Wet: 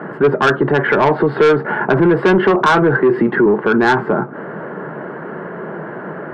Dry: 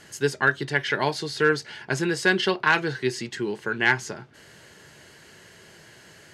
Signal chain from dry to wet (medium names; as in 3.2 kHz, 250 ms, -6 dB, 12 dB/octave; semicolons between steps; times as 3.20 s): elliptic band-pass 170–1300 Hz, stop band 60 dB; saturation -23 dBFS, distortion -10 dB; loudness maximiser +33 dB; 1.20–3.46 s: three bands compressed up and down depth 40%; trim -5.5 dB